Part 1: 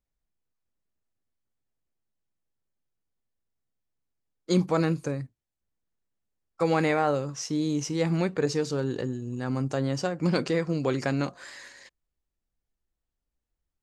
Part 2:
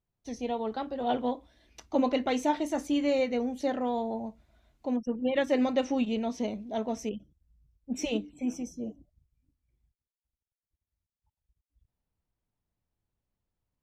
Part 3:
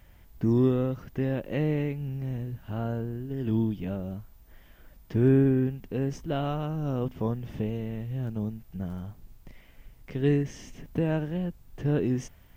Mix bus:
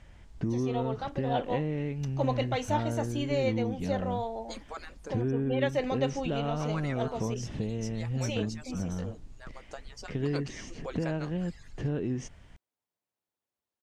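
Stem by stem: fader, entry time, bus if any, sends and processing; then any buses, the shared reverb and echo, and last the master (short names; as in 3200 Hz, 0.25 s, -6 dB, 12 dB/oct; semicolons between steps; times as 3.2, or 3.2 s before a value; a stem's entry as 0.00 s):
-9.5 dB, 0.00 s, no send, median-filter separation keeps percussive
-1.0 dB, 0.25 s, no send, HPF 390 Hz 12 dB/oct
+2.0 dB, 0.00 s, no send, LPF 8400 Hz 24 dB/oct; compressor 4:1, threshold -31 dBFS, peak gain reduction 12 dB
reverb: off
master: dry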